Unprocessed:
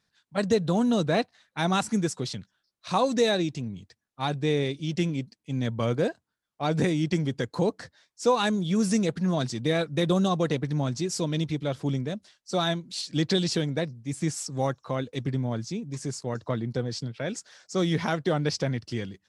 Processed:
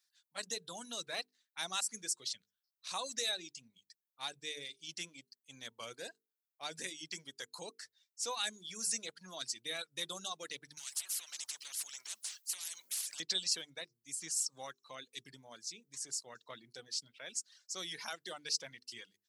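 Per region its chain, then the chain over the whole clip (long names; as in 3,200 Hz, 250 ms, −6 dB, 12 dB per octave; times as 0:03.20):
0:10.77–0:13.20: downward compressor 2.5 to 1, threshold −35 dBFS + every bin compressed towards the loudest bin 10 to 1
whole clip: mains-hum notches 50/100/150/200/250/300/350/400/450 Hz; reverb reduction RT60 1.1 s; first difference; level +1.5 dB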